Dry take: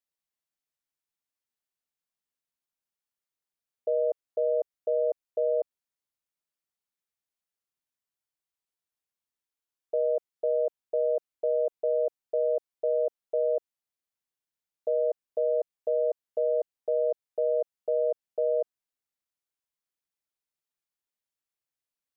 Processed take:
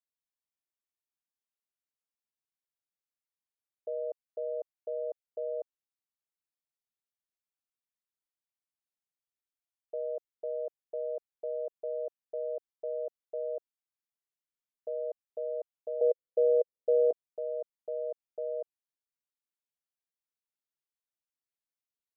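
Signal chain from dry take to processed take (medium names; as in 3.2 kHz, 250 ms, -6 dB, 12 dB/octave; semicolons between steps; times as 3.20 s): 16.01–17.11 s: resonant low-pass 510 Hz, resonance Q 4.9; trim -9 dB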